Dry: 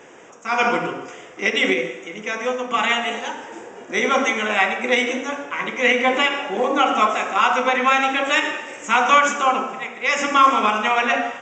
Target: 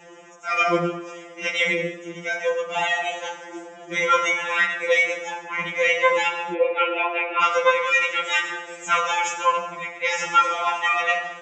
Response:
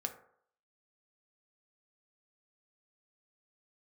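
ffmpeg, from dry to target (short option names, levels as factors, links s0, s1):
-filter_complex "[0:a]asettb=1/sr,asplit=3[s0][s1][s2];[s0]atrim=end=6.534[s3];[s1]atrim=start=6.53:end=7.42,asetpts=PTS-STARTPTS,afade=t=in:d=0.004:c=qsin,afade=t=out:st=0.886:d=0.004:c=qsin,highpass=f=320:w=0.5412,highpass=f=320:w=1.3066,equalizer=f=330:t=q:w=4:g=9,equalizer=f=490:t=q:w=4:g=5,equalizer=f=730:t=q:w=4:g=-5,equalizer=f=1200:t=q:w=4:g=-6,equalizer=f=1700:t=q:w=4:g=-3,equalizer=f=2500:t=q:w=4:g=8,lowpass=f=2800:w=0.5412,lowpass=f=2800:w=1.3066[s4];[s2]atrim=start=7.416[s5];[s3][s4]acrossfade=d=0.004:c1=hsin:c2=qsin[s6];[s6][s5]acrossfade=d=0.004:c1=qsin:c2=hsin,afftfilt=real='re*2.83*eq(mod(b,8),0)':imag='im*2.83*eq(mod(b,8),0)':win_size=2048:overlap=0.75"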